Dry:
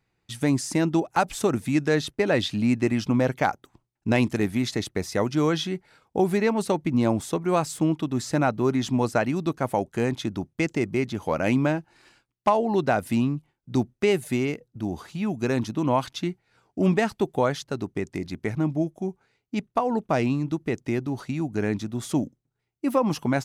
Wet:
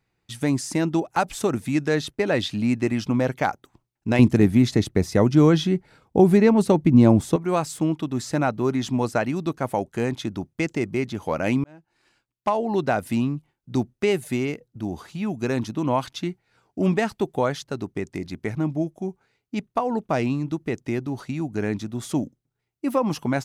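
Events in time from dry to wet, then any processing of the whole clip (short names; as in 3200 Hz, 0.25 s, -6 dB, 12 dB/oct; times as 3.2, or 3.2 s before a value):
4.19–7.36 low shelf 460 Hz +10.5 dB
11.64–12.75 fade in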